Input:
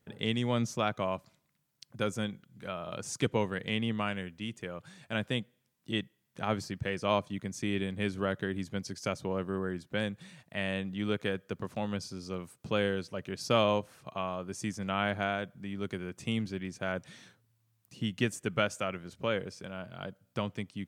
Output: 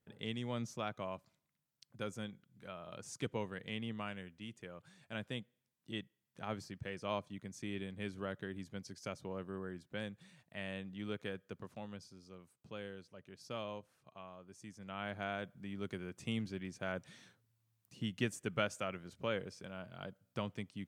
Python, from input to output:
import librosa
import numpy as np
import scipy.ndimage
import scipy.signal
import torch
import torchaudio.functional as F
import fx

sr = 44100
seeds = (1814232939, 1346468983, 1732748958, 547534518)

y = fx.gain(x, sr, db=fx.line((11.49, -10.0), (12.31, -17.0), (14.66, -17.0), (15.46, -6.0)))